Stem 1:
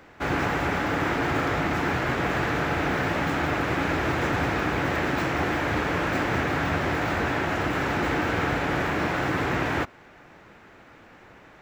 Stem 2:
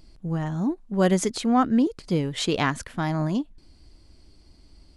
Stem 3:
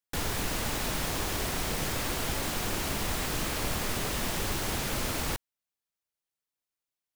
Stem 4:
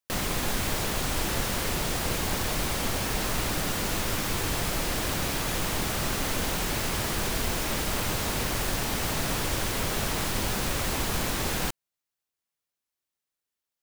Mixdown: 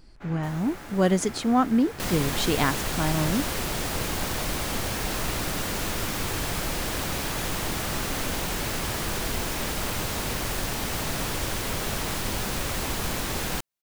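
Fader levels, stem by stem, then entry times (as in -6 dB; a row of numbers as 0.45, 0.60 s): -17.0, -1.0, -15.0, -0.5 dB; 0.00, 0.00, 0.30, 1.90 s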